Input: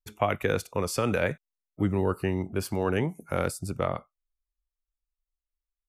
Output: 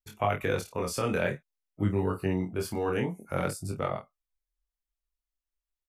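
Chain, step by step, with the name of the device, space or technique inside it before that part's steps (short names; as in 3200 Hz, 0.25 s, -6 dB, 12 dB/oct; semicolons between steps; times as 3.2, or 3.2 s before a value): double-tracked vocal (doubler 28 ms -7 dB; chorus 0.52 Hz, delay 20 ms, depth 3.9 ms)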